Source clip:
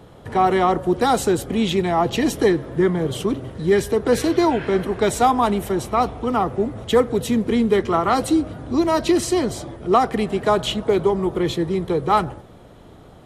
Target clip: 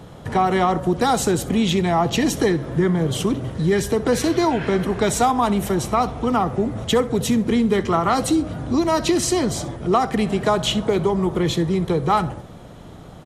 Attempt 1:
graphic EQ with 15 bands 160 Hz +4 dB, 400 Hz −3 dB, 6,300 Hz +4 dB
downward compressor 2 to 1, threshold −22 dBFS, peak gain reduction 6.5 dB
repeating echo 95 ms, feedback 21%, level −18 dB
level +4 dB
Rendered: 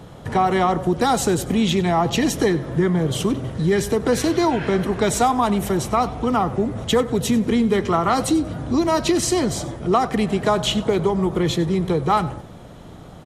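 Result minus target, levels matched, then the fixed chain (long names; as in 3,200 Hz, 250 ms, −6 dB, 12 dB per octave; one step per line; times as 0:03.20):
echo 30 ms late
graphic EQ with 15 bands 160 Hz +4 dB, 400 Hz −3 dB, 6,300 Hz +4 dB
downward compressor 2 to 1, threshold −22 dBFS, peak gain reduction 6.5 dB
repeating echo 65 ms, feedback 21%, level −18 dB
level +4 dB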